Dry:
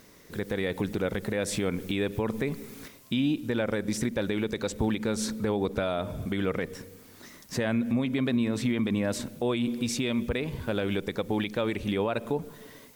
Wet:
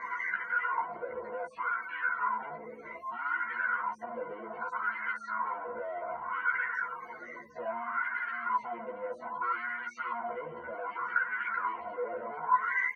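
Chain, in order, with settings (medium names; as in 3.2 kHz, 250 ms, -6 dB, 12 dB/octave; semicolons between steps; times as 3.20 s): one-bit comparator; loudest bins only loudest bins 64; high-order bell 1.5 kHz +14.5 dB; doubling 14 ms -2.5 dB; wah-wah 0.64 Hz 520–1700 Hz, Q 5.6; rippled EQ curve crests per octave 1.9, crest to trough 16 dB; trim -4.5 dB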